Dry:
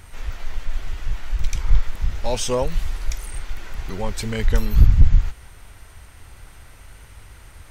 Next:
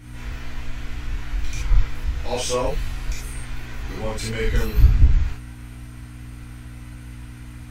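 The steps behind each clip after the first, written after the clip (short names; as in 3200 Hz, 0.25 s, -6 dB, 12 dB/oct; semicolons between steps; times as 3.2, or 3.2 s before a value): hum 60 Hz, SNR 19 dB; bell 2200 Hz +3.5 dB 1.6 oct; non-linear reverb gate 0.1 s flat, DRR -7.5 dB; gain -9 dB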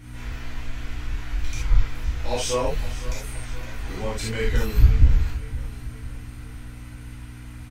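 feedback echo 0.514 s, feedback 52%, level -16 dB; gain -1 dB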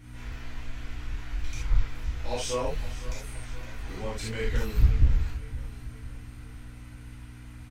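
Doppler distortion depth 0.59 ms; gain -5.5 dB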